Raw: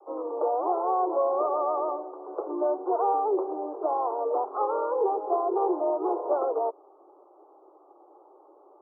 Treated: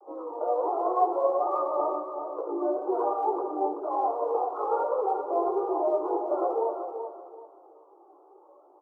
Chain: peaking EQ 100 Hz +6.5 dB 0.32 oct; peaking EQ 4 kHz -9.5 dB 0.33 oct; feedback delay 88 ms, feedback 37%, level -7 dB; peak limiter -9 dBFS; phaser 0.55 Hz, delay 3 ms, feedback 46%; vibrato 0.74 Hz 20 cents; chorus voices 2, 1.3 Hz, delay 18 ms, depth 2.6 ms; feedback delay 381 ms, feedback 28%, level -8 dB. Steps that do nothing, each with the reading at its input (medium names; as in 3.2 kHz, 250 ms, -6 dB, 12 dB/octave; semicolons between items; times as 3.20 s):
peaking EQ 100 Hz: input has nothing below 270 Hz; peaking EQ 4 kHz: input has nothing above 1.4 kHz; peak limiter -9 dBFS: peak at its input -13.0 dBFS